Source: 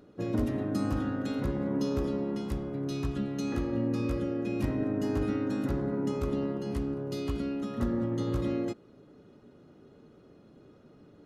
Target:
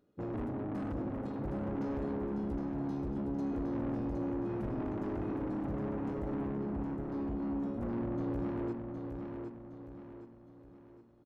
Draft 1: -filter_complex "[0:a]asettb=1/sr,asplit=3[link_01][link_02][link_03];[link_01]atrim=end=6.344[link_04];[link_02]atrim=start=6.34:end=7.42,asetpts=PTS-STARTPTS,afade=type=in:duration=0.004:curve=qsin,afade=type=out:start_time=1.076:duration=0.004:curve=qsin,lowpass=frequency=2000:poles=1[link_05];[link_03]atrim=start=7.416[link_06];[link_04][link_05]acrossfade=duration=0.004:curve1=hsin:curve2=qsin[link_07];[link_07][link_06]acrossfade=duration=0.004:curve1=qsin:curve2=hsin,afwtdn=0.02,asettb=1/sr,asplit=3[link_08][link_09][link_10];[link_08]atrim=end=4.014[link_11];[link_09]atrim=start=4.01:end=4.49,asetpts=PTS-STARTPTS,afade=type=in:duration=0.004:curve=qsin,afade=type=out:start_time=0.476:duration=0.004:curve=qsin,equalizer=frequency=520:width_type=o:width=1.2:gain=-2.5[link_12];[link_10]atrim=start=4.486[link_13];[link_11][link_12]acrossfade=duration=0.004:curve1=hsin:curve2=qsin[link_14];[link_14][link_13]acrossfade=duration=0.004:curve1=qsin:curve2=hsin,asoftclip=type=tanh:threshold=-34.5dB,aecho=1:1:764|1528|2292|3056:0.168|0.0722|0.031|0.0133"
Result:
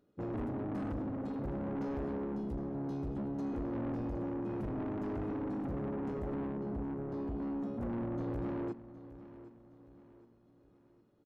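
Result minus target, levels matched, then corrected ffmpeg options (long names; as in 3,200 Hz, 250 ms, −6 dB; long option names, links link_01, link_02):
echo-to-direct −10 dB
-filter_complex "[0:a]asettb=1/sr,asplit=3[link_01][link_02][link_03];[link_01]atrim=end=6.344[link_04];[link_02]atrim=start=6.34:end=7.42,asetpts=PTS-STARTPTS,afade=type=in:duration=0.004:curve=qsin,afade=type=out:start_time=1.076:duration=0.004:curve=qsin,lowpass=frequency=2000:poles=1[link_05];[link_03]atrim=start=7.416[link_06];[link_04][link_05]acrossfade=duration=0.004:curve1=hsin:curve2=qsin[link_07];[link_07][link_06]acrossfade=duration=0.004:curve1=qsin:curve2=hsin,afwtdn=0.02,asettb=1/sr,asplit=3[link_08][link_09][link_10];[link_08]atrim=end=4.014[link_11];[link_09]atrim=start=4.01:end=4.49,asetpts=PTS-STARTPTS,afade=type=in:duration=0.004:curve=qsin,afade=type=out:start_time=0.476:duration=0.004:curve=qsin,equalizer=frequency=520:width_type=o:width=1.2:gain=-2.5[link_12];[link_10]atrim=start=4.486[link_13];[link_11][link_12]acrossfade=duration=0.004:curve1=hsin:curve2=qsin[link_14];[link_14][link_13]acrossfade=duration=0.004:curve1=qsin:curve2=hsin,asoftclip=type=tanh:threshold=-34.5dB,aecho=1:1:764|1528|2292|3056|3820:0.531|0.228|0.0982|0.0422|0.0181"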